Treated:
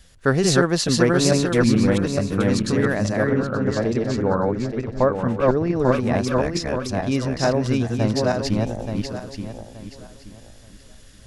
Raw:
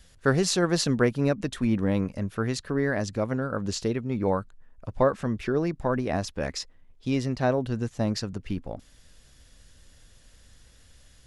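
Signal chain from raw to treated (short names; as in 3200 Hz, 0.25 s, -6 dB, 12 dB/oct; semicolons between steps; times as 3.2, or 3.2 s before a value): regenerating reverse delay 0.438 s, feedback 50%, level -0.5 dB; 3.27–5.76 LPF 2300 Hz 6 dB/oct; gain +3.5 dB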